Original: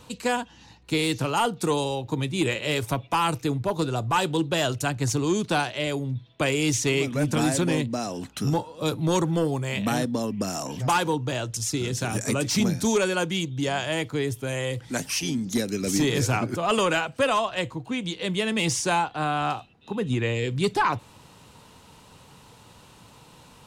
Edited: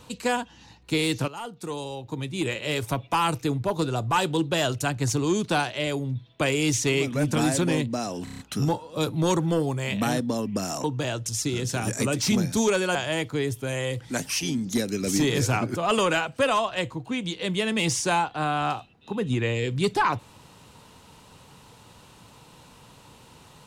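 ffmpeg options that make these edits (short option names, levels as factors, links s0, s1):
-filter_complex "[0:a]asplit=9[s0][s1][s2][s3][s4][s5][s6][s7][s8];[s0]atrim=end=1.28,asetpts=PTS-STARTPTS,afade=t=out:st=1.276:d=0.004:c=hsin:silence=0.16788[s9];[s1]atrim=start=1.28:end=8.272,asetpts=PTS-STARTPTS,afade=t=in:d=1.82:silence=0.16788[s10];[s2]atrim=start=8.238:end=8.272[s11];[s3]atrim=start=8.238:end=8.272[s12];[s4]atrim=start=8.238:end=8.272[s13];[s5]atrim=start=8.238:end=8.272[s14];[s6]atrim=start=8.238:end=10.692[s15];[s7]atrim=start=11.118:end=13.232[s16];[s8]atrim=start=13.748[s17];[s9][s10]concat=n=2:v=0:a=1[s18];[s18][s11]acrossfade=d=0.004:c1=hsin:c2=hsin[s19];[s19][s12]acrossfade=d=0.004:c1=hsin:c2=hsin[s20];[s20][s13]acrossfade=d=0.004:c1=hsin:c2=hsin[s21];[s21][s14]acrossfade=d=0.004:c1=hsin:c2=hsin[s22];[s22][s15]acrossfade=d=0.004:c1=hsin:c2=hsin[s23];[s23][s16]acrossfade=d=0.004:c1=hsin:c2=hsin[s24];[s24][s17]acrossfade=d=0.004:c1=hsin:c2=hsin"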